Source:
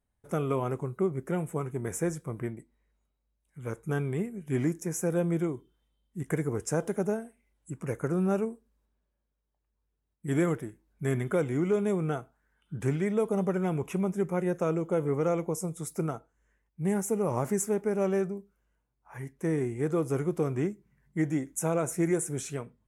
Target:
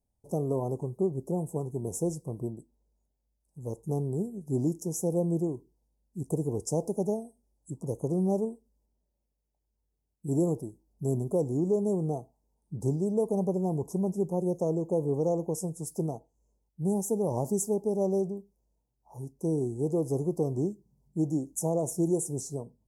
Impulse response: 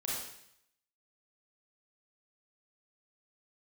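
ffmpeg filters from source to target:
-af "asuperstop=centerf=2100:order=12:qfactor=0.56"

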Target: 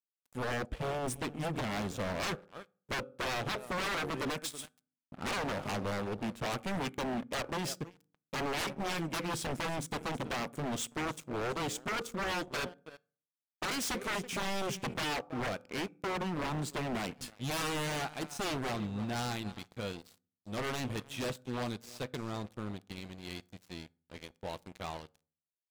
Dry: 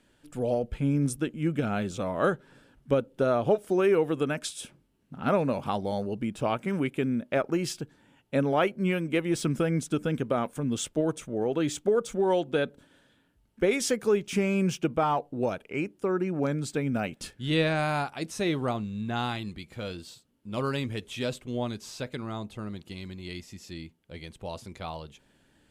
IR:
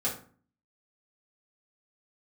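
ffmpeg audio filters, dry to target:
-filter_complex "[0:a]asplit=2[a][b];[b]aecho=0:1:326:0.133[c];[a][c]amix=inputs=2:normalize=0,aeval=exprs='sgn(val(0))*max(abs(val(0))-0.00794,0)':c=same,asplit=2[d][e];[1:a]atrim=start_sample=2205[f];[e][f]afir=irnorm=-1:irlink=0,volume=-26.5dB[g];[d][g]amix=inputs=2:normalize=0,aeval=exprs='0.0355*(abs(mod(val(0)/0.0355+3,4)-2)-1)':c=same"

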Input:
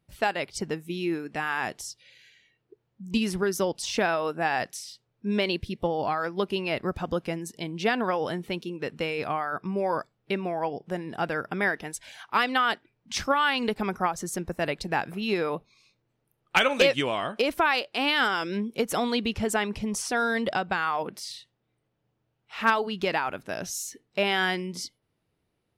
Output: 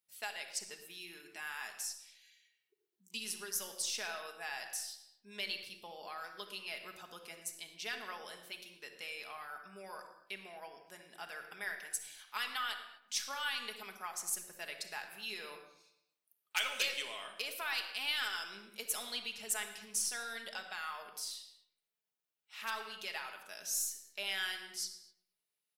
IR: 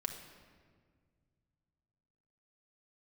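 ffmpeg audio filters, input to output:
-filter_complex "[0:a]aderivative,aeval=exprs='0.211*(cos(1*acos(clip(val(0)/0.211,-1,1)))-cos(1*PI/2))+0.00168*(cos(8*acos(clip(val(0)/0.211,-1,1)))-cos(8*PI/2))':c=same,asplit=2[a][b];[b]adelay=113,lowpass=f=2.8k:p=1,volume=-16dB,asplit=2[c][d];[d]adelay=113,lowpass=f=2.8k:p=1,volume=0.5,asplit=2[e][f];[f]adelay=113,lowpass=f=2.8k:p=1,volume=0.5,asplit=2[g][h];[h]adelay=113,lowpass=f=2.8k:p=1,volume=0.5[i];[a][c][e][g][i]amix=inputs=5:normalize=0[j];[1:a]atrim=start_sample=2205,afade=t=out:st=0.31:d=0.01,atrim=end_sample=14112[k];[j][k]afir=irnorm=-1:irlink=0,volume=-1dB"

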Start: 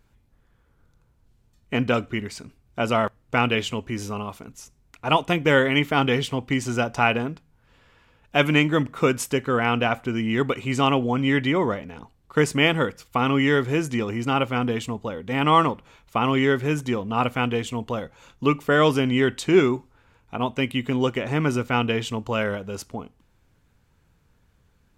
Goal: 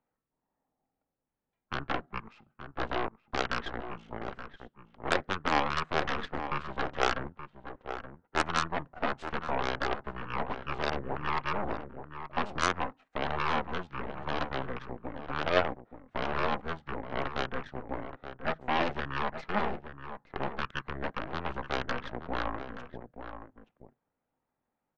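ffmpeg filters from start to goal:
-filter_complex "[0:a]acrossover=split=300 4600:gain=0.0708 1 0.0794[a][b][c];[a][b][c]amix=inputs=3:normalize=0,asplit=2[d][e];[e]alimiter=limit=-14.5dB:level=0:latency=1:release=67,volume=0.5dB[f];[d][f]amix=inputs=2:normalize=0,aeval=exprs='0.891*(cos(1*acos(clip(val(0)/0.891,-1,1)))-cos(1*PI/2))+0.224*(cos(3*acos(clip(val(0)/0.891,-1,1)))-cos(3*PI/2))+0.112*(cos(6*acos(clip(val(0)/0.891,-1,1)))-cos(6*PI/2))+0.00631*(cos(7*acos(clip(val(0)/0.891,-1,1)))-cos(7*PI/2))+0.158*(cos(8*acos(clip(val(0)/0.891,-1,1)))-cos(8*PI/2))':c=same,acrossover=split=700[g][h];[g]asoftclip=type=tanh:threshold=-27dB[i];[i][h]amix=inputs=2:normalize=0,asetrate=24046,aresample=44100,atempo=1.83401,asplit=2[j][k];[k]adelay=874.6,volume=-9dB,highshelf=f=4k:g=-19.7[l];[j][l]amix=inputs=2:normalize=0,volume=-4.5dB"

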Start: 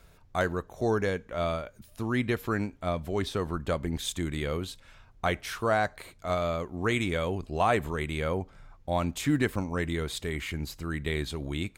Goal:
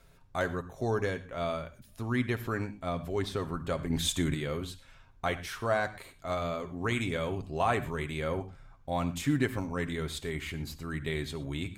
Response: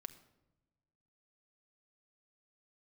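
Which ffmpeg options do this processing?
-filter_complex "[0:a]asettb=1/sr,asplit=3[a][b][c];[a]atrim=end=3.904[d];[b]atrim=start=3.9:end=4.34,asetpts=PTS-STARTPTS,afade=t=in:d=0.004:c=qsin,afade=t=out:st=0.436:d=0.004:c=qsin,acontrast=47[e];[c]atrim=start=4.336[f];[d][e]acrossfade=d=0.004:c1=hsin:c2=qsin[g];[g][f]acrossfade=d=0.004:c1=qsin:c2=hsin[h];[1:a]atrim=start_sample=2205,atrim=end_sample=3969,asetrate=29988,aresample=44100[i];[h][i]afir=irnorm=-1:irlink=0"

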